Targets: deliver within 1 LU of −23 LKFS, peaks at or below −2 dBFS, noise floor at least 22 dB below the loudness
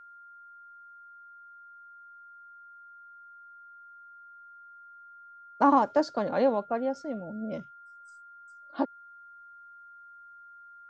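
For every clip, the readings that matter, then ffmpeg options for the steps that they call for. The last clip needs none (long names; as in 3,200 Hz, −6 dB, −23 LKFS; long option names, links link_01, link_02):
interfering tone 1,400 Hz; level of the tone −48 dBFS; integrated loudness −28.0 LKFS; sample peak −10.0 dBFS; target loudness −23.0 LKFS
→ -af "bandreject=frequency=1400:width=30"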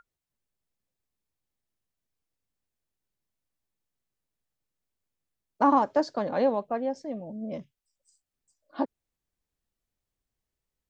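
interfering tone none found; integrated loudness −28.0 LKFS; sample peak −10.5 dBFS; target loudness −23.0 LKFS
→ -af "volume=5dB"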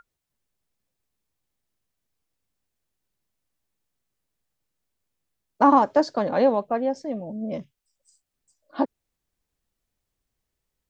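integrated loudness −23.0 LKFS; sample peak −5.5 dBFS; background noise floor −83 dBFS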